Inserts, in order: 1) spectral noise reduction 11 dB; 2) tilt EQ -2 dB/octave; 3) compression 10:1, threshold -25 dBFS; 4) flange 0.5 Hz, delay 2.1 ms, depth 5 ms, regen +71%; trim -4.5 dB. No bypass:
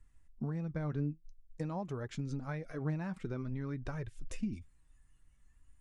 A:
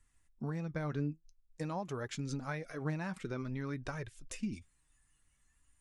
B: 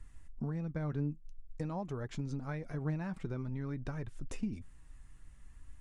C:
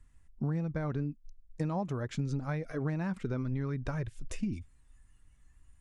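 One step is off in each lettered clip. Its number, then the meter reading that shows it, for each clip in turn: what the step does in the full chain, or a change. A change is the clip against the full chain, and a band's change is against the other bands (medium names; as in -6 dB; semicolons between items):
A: 2, 125 Hz band -5.5 dB; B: 1, momentary loudness spread change +4 LU; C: 4, loudness change +4.0 LU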